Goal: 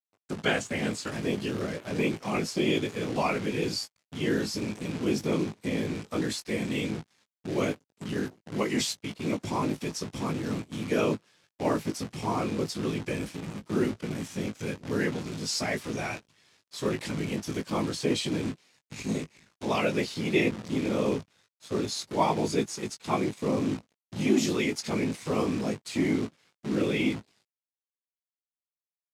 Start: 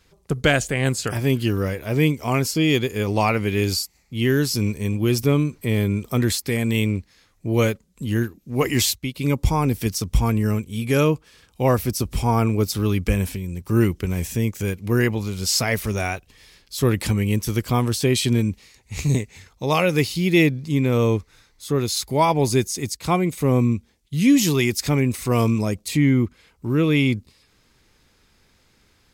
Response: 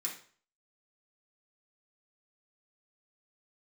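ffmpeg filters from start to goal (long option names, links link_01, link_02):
-filter_complex "[0:a]agate=range=-9dB:threshold=-53dB:ratio=16:detection=peak,afftfilt=real='hypot(re,im)*cos(2*PI*random(0))':imag='hypot(re,im)*sin(2*PI*random(1))':win_size=512:overlap=0.75,adynamicequalizer=threshold=0.0158:dfrequency=210:dqfactor=0.87:tfrequency=210:tqfactor=0.87:attack=5:release=100:ratio=0.375:range=1.5:mode=boostabove:tftype=bell,acrossover=split=240|690|5000[link_01][link_02][link_03][link_04];[link_01]asoftclip=type=hard:threshold=-30dB[link_05];[link_05][link_02][link_03][link_04]amix=inputs=4:normalize=0,acrusher=bits=7:dc=4:mix=0:aa=0.000001,highpass=120,lowpass=7400,asplit=2[link_06][link_07];[link_07]adelay=19,volume=-7.5dB[link_08];[link_06][link_08]amix=inputs=2:normalize=0,volume=-2.5dB"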